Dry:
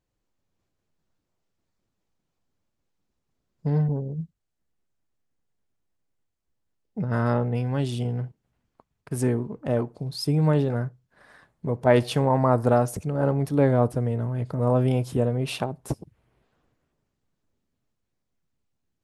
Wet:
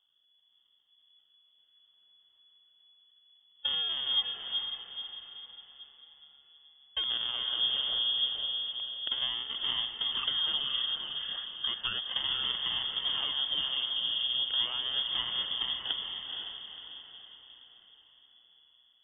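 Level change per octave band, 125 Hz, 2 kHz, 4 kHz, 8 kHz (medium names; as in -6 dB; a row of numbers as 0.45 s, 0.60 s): under -35 dB, -3.5 dB, +17.0 dB, under -35 dB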